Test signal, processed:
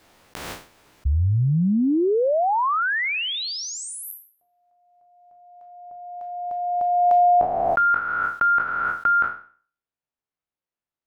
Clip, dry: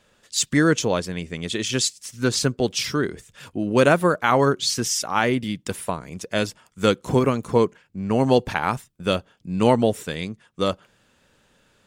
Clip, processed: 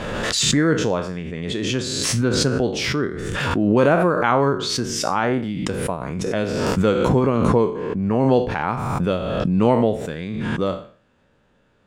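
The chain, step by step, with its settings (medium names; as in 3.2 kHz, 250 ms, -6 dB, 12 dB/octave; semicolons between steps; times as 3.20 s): spectral sustain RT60 0.44 s; low-pass 1.2 kHz 6 dB/octave; swell ahead of each attack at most 24 dB/s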